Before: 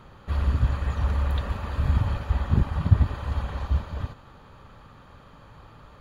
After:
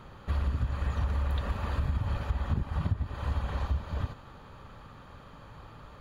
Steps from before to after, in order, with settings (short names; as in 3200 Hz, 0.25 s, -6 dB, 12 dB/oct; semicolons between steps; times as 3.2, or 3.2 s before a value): compressor 12:1, threshold -25 dBFS, peak gain reduction 16 dB